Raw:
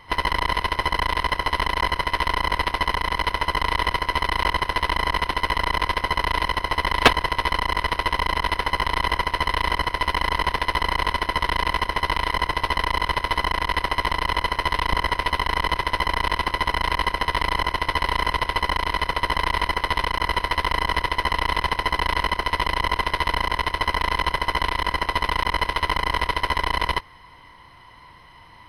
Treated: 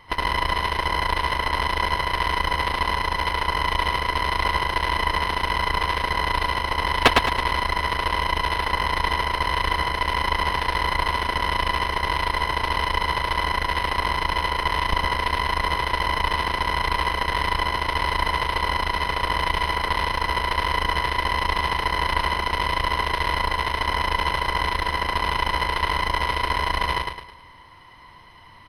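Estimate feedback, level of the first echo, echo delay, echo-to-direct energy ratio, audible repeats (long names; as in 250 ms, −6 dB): 40%, −3.5 dB, 107 ms, −2.5 dB, 4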